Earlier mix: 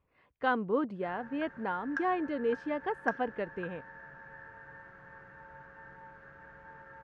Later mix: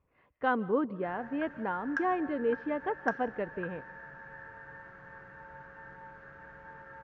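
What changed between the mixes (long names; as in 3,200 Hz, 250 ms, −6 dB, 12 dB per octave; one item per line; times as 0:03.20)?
speech: add high-frequency loss of the air 300 metres
reverb: on, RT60 0.45 s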